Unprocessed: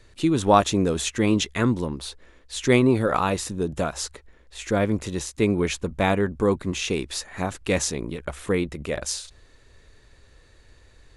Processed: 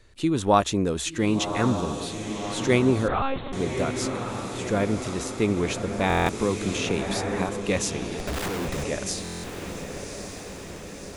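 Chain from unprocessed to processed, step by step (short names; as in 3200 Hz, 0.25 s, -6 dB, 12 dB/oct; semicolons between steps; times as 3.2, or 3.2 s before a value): 8.19–8.84 Schmitt trigger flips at -41 dBFS; diffused feedback echo 1.118 s, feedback 63%, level -7.5 dB; 3.08–3.53 monotone LPC vocoder at 8 kHz 270 Hz; stuck buffer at 6.08/9.23, samples 1024, times 8; 6.26–7.49 three-band squash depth 70%; gain -2.5 dB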